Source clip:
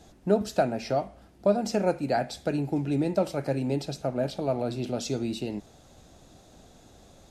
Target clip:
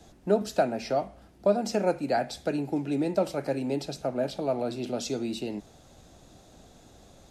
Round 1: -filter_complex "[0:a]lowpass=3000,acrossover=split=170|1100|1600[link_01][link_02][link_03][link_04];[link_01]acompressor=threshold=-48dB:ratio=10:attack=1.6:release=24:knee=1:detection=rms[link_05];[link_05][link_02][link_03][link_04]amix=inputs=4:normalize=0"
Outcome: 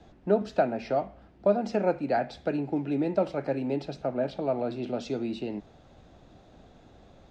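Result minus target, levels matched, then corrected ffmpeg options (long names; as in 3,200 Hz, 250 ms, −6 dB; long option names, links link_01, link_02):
4,000 Hz band −6.5 dB
-filter_complex "[0:a]acrossover=split=170|1100|1600[link_01][link_02][link_03][link_04];[link_01]acompressor=threshold=-48dB:ratio=10:attack=1.6:release=24:knee=1:detection=rms[link_05];[link_05][link_02][link_03][link_04]amix=inputs=4:normalize=0"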